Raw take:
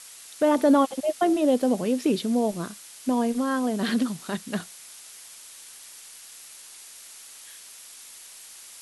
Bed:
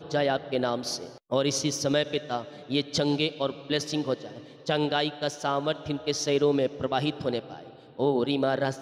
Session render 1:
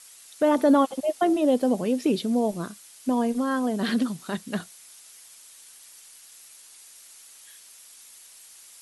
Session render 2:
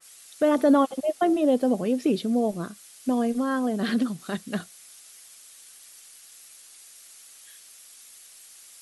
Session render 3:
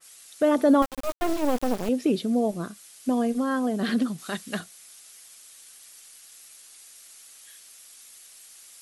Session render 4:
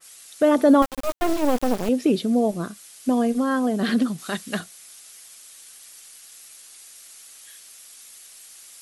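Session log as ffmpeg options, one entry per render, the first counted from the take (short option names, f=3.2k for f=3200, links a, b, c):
-af "afftdn=nr=6:nf=-46"
-af "bandreject=f=940:w=8,adynamicequalizer=threshold=0.00631:dfrequency=2300:dqfactor=0.7:tfrequency=2300:tqfactor=0.7:attack=5:release=100:ratio=0.375:range=1.5:mode=cutabove:tftype=highshelf"
-filter_complex "[0:a]asettb=1/sr,asplit=3[a][b][c];[a]atrim=end=0.824[d];[b]atrim=start=0.82:end=1.89,asetpts=PTS-STARTPTS,afade=t=in:d=0.004:c=qsin,afade=t=out:st=1.066:d=0.004:c=qsin,acrusher=bits=3:dc=4:mix=0:aa=0.000001[e];[c]atrim=start=1.886[f];[d][e]acrossfade=d=0.004:c1=hsin:c2=qsin[g];[g][f]acrossfade=d=0.004:c1=qsin:c2=hsin,asettb=1/sr,asplit=3[h][i][j];[h]atrim=end=4.184[k];[i]atrim=start=4.18:end=4.6,asetpts=PTS-STARTPTS,afade=t=in:d=0.004:c=qsin,afade=t=out:st=0.416:d=0.004:c=qsin,tiltshelf=f=700:g=-4[l];[j]atrim=start=4.596[m];[k][l]acrossfade=d=0.004:c1=hsin:c2=qsin[n];[n][m]acrossfade=d=0.004:c1=qsin:c2=hsin"
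-af "volume=3.5dB"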